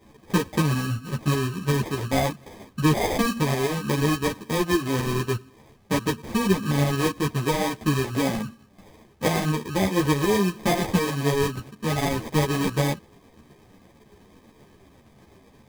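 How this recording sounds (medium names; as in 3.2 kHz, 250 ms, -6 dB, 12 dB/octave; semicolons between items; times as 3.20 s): aliases and images of a low sample rate 1.4 kHz, jitter 0%; tremolo saw up 8.2 Hz, depth 45%; a shimmering, thickened sound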